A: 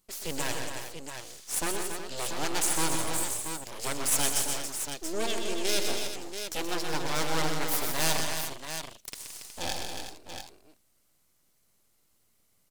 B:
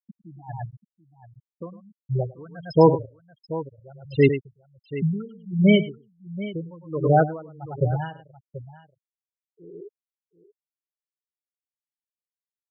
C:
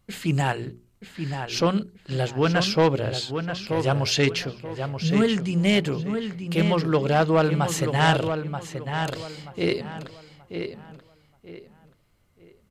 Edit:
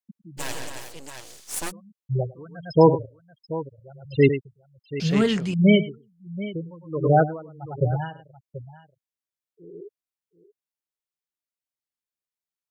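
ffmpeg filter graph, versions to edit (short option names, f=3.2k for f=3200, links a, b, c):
-filter_complex "[1:a]asplit=3[a][b][c];[a]atrim=end=0.41[d];[0:a]atrim=start=0.37:end=1.72[e];[b]atrim=start=1.68:end=5.002[f];[2:a]atrim=start=4.998:end=5.542[g];[c]atrim=start=5.538[h];[d][e]acrossfade=d=0.04:c1=tri:c2=tri[i];[i][f]acrossfade=d=0.04:c1=tri:c2=tri[j];[j][g]acrossfade=d=0.004:c1=hsin:c2=hsin[k];[k][h]acrossfade=d=0.004:c1=hsin:c2=hsin"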